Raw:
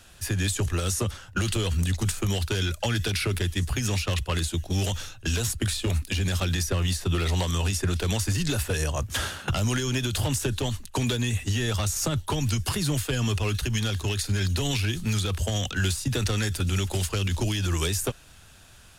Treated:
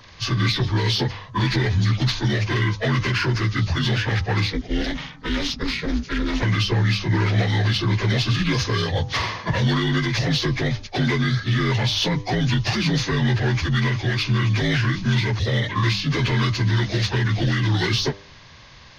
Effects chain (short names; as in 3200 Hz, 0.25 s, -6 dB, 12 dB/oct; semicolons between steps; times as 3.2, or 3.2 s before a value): inharmonic rescaling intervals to 80%; in parallel at -10.5 dB: hard clip -30 dBFS, distortion -8 dB; 4.5–6.43 on the sum: ring modulator 150 Hz; de-hum 99.46 Hz, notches 13; gain +5.5 dB